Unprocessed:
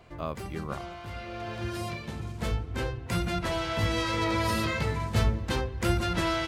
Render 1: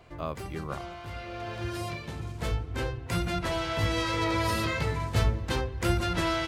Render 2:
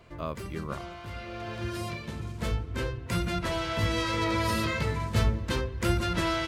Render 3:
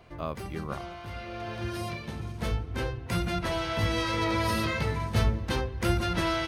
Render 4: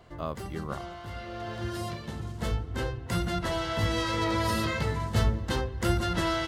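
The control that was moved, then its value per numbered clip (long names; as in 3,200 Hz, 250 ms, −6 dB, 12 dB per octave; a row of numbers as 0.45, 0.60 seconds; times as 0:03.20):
notch filter, centre frequency: 210, 770, 7,400, 2,400 Hertz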